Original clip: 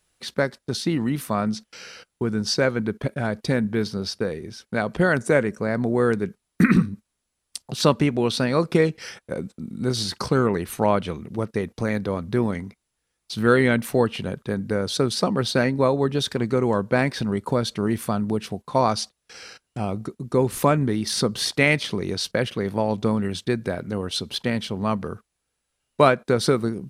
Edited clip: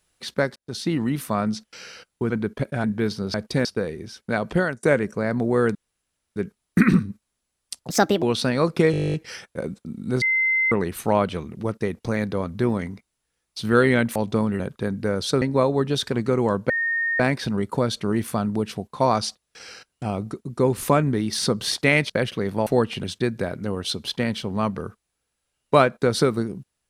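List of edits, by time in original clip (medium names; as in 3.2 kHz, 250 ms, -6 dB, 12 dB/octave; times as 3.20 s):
0.56–1.01 s: fade in equal-power
2.30–2.74 s: delete
3.28–3.59 s: move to 4.09 s
4.99–5.27 s: fade out
6.19 s: insert room tone 0.61 s
7.73–8.18 s: speed 138%
8.87 s: stutter 0.02 s, 12 plays
9.95–10.45 s: bleep 2.07 kHz -17.5 dBFS
13.89–14.26 s: swap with 22.86–23.30 s
15.08–15.66 s: delete
16.94 s: add tone 1.84 kHz -20.5 dBFS 0.50 s
21.84–22.29 s: delete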